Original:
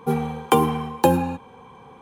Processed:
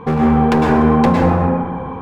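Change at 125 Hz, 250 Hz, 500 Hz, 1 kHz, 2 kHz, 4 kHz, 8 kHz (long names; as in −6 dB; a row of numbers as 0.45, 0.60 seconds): +10.5 dB, +11.5 dB, +6.0 dB, +6.0 dB, +9.0 dB, −0.5 dB, can't be measured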